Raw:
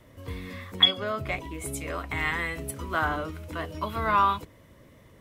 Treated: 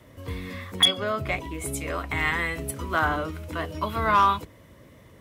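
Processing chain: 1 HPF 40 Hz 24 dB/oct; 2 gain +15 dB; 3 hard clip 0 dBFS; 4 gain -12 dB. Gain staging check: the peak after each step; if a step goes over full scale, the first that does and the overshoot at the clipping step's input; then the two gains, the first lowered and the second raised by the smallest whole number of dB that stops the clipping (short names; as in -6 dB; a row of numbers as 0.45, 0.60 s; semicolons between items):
-6.5, +8.5, 0.0, -12.0 dBFS; step 2, 8.5 dB; step 2 +6 dB, step 4 -3 dB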